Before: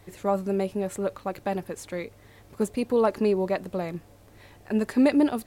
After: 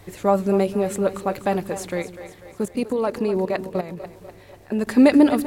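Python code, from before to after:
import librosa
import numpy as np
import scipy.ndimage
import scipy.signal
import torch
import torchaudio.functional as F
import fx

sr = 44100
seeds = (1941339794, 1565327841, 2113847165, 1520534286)

y = fx.level_steps(x, sr, step_db=14, at=(2.02, 4.87))
y = fx.echo_split(y, sr, split_hz=350.0, low_ms=151, high_ms=247, feedback_pct=52, wet_db=-12.0)
y = y * 10.0 ** (6.5 / 20.0)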